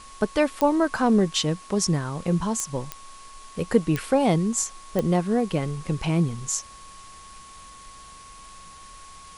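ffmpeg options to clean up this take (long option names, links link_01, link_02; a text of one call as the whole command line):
ffmpeg -i in.wav -af "adeclick=threshold=4,bandreject=frequency=1100:width=30,afwtdn=0.0045" out.wav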